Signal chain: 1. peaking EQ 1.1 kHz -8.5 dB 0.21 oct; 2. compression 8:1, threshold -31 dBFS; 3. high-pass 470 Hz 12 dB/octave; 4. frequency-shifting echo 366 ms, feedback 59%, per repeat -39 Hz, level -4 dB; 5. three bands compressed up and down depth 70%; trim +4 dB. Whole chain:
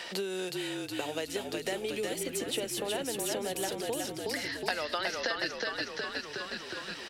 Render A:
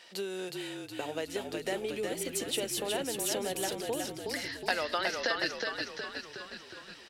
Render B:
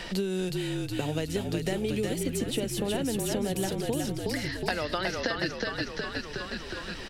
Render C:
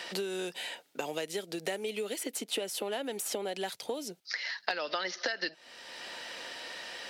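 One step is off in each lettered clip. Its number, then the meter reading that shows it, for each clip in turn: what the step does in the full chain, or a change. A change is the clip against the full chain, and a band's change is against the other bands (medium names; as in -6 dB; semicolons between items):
5, momentary loudness spread change +5 LU; 3, 125 Hz band +14.0 dB; 4, crest factor change +2.5 dB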